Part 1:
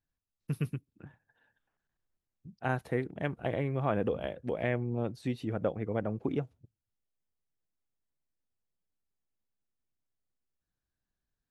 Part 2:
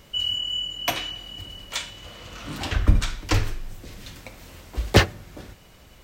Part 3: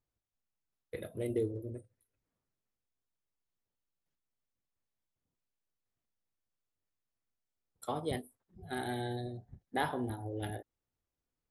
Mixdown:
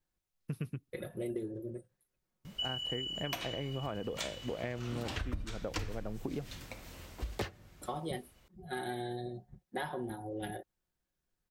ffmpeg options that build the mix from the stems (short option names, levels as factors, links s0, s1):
-filter_complex "[0:a]volume=0.841[s0];[1:a]adelay=2450,volume=0.531,afade=t=out:st=7.11:d=0.39:silence=0.398107[s1];[2:a]aecho=1:1:5.5:0.72,volume=0.891[s2];[s0][s1][s2]amix=inputs=3:normalize=0,acompressor=threshold=0.0224:ratio=16"